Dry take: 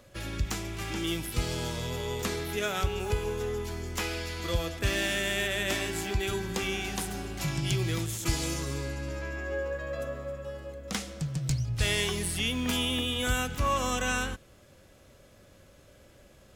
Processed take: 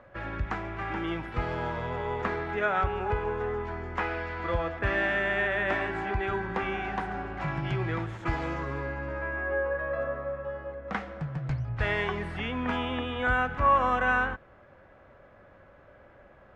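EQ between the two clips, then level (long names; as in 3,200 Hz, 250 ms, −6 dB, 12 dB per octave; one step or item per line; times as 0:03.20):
low-pass with resonance 1,700 Hz, resonance Q 2
parametric band 820 Hz +8.5 dB 1.3 octaves
−2.0 dB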